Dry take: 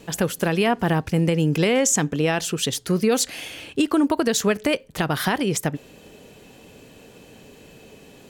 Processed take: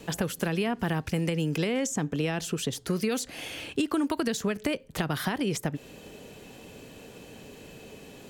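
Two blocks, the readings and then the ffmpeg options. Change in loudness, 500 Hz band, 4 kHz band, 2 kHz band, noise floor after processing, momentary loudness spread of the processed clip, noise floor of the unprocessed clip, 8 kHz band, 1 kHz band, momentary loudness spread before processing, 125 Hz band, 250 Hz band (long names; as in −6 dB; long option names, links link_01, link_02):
−8.0 dB, −8.5 dB, −7.5 dB, −7.5 dB, −49 dBFS, 19 LU, −48 dBFS, −11.0 dB, −9.0 dB, 7 LU, −6.5 dB, −6.5 dB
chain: -filter_complex "[0:a]acrossover=split=330|1300[link_01][link_02][link_03];[link_01]acompressor=threshold=-29dB:ratio=4[link_04];[link_02]acompressor=threshold=-34dB:ratio=4[link_05];[link_03]acompressor=threshold=-35dB:ratio=4[link_06];[link_04][link_05][link_06]amix=inputs=3:normalize=0"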